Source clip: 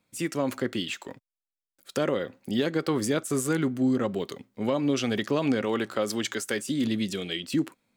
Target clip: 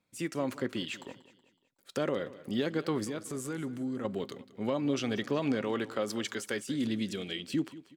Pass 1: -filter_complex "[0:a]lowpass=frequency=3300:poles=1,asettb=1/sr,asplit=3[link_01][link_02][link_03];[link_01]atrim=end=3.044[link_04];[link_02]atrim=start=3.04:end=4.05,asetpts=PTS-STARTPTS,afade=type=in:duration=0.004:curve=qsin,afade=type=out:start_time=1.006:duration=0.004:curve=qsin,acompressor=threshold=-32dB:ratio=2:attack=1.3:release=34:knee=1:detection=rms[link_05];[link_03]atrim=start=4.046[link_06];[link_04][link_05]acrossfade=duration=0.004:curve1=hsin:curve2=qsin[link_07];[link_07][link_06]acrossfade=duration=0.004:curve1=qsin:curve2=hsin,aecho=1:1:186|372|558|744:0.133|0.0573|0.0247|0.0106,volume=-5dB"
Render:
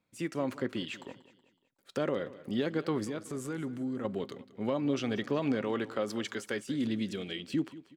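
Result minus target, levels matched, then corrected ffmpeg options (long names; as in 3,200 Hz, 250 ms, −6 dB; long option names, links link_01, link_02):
8,000 Hz band −4.5 dB
-filter_complex "[0:a]lowpass=frequency=8200:poles=1,asettb=1/sr,asplit=3[link_01][link_02][link_03];[link_01]atrim=end=3.044[link_04];[link_02]atrim=start=3.04:end=4.05,asetpts=PTS-STARTPTS,afade=type=in:duration=0.004:curve=qsin,afade=type=out:start_time=1.006:duration=0.004:curve=qsin,acompressor=threshold=-32dB:ratio=2:attack=1.3:release=34:knee=1:detection=rms[link_05];[link_03]atrim=start=4.046[link_06];[link_04][link_05]acrossfade=duration=0.004:curve1=hsin:curve2=qsin[link_07];[link_07][link_06]acrossfade=duration=0.004:curve1=qsin:curve2=hsin,aecho=1:1:186|372|558|744:0.133|0.0573|0.0247|0.0106,volume=-5dB"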